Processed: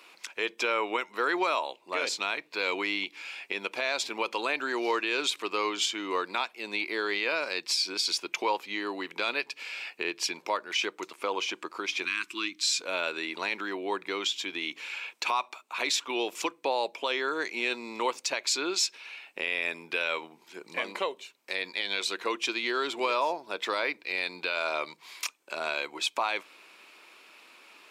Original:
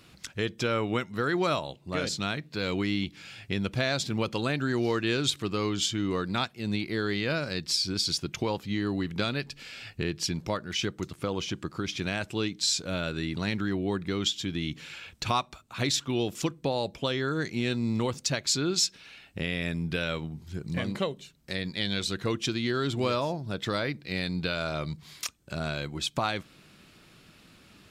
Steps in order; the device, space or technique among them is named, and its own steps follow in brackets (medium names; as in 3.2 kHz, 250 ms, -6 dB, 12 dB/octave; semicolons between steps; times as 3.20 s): 12.05–12.81 s: elliptic band-stop 340–1100 Hz, stop band 40 dB; laptop speaker (high-pass 360 Hz 24 dB/octave; peaking EQ 970 Hz +9.5 dB 0.5 oct; peaking EQ 2.4 kHz +9 dB 0.43 oct; peak limiter -17 dBFS, peak gain reduction 8 dB)